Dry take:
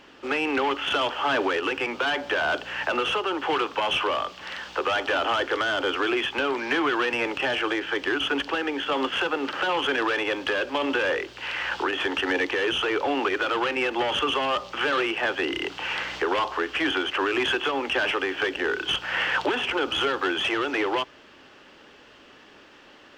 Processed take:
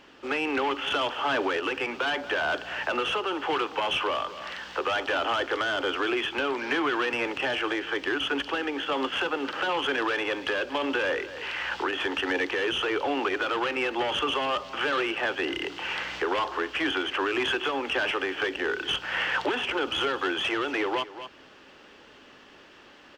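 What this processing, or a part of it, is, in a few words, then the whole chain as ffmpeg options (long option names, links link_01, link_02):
ducked delay: -filter_complex "[0:a]asplit=3[link_01][link_02][link_03];[link_02]adelay=236,volume=-4dB[link_04];[link_03]apad=whole_len=1032514[link_05];[link_04][link_05]sidechaincompress=threshold=-37dB:ratio=8:attack=8.1:release=340[link_06];[link_01][link_06]amix=inputs=2:normalize=0,volume=-2.5dB"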